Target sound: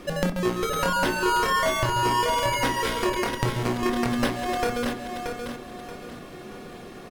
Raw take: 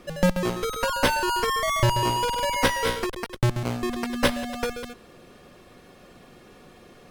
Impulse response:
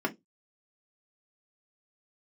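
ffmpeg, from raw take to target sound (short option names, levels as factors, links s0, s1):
-filter_complex "[0:a]acompressor=threshold=0.0355:ratio=6,aecho=1:1:629|1258|1887|2516:0.501|0.175|0.0614|0.0215,asplit=2[s0][s1];[1:a]atrim=start_sample=2205,adelay=25[s2];[s1][s2]afir=irnorm=-1:irlink=0,volume=0.224[s3];[s0][s3]amix=inputs=2:normalize=0,volume=1.88"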